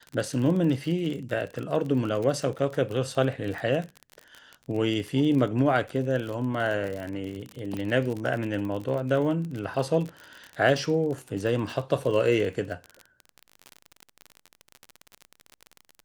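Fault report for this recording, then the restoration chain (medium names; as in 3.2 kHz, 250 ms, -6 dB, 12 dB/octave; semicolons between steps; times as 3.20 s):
crackle 41 per s -31 dBFS
7.77 s: pop -21 dBFS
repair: de-click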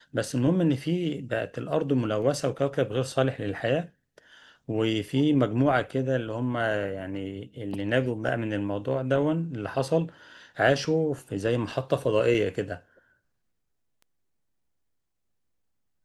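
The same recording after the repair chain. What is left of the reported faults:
nothing left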